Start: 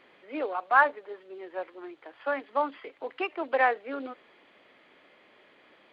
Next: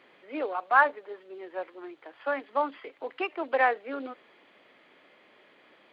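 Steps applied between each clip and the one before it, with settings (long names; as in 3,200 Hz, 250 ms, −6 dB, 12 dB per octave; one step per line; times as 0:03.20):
high-pass filter 93 Hz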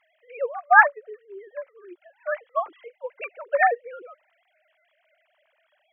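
three sine waves on the formant tracks
expander for the loud parts 1.5 to 1, over −34 dBFS
level +7.5 dB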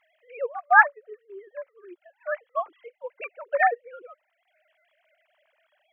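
transient designer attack −3 dB, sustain −7 dB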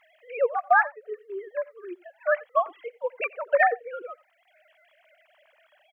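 downward compressor 10 to 1, threshold −23 dBFS, peak gain reduction 14.5 dB
single-tap delay 87 ms −22 dB
level +7 dB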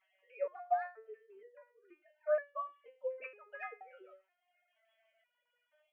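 step-sequenced resonator 2.1 Hz 190–570 Hz
level −1.5 dB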